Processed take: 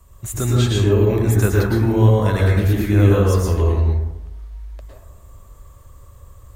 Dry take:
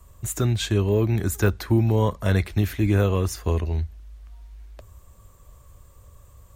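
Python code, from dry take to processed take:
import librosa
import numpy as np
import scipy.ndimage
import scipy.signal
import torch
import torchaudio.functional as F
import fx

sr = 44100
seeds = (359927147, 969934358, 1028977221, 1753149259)

y = fx.rev_plate(x, sr, seeds[0], rt60_s=0.97, hf_ratio=0.4, predelay_ms=95, drr_db=-3.5)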